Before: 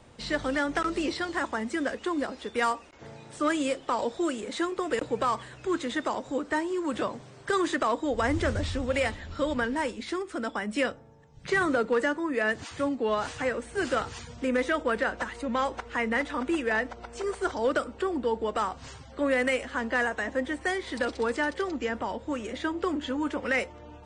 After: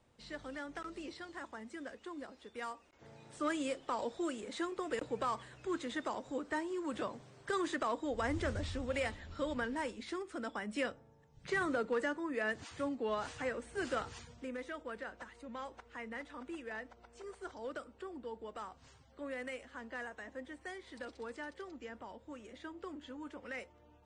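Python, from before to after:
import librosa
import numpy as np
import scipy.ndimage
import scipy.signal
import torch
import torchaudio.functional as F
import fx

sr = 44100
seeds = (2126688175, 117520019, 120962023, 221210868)

y = fx.gain(x, sr, db=fx.line((2.74, -16.5), (3.26, -9.0), (14.17, -9.0), (14.57, -17.0)))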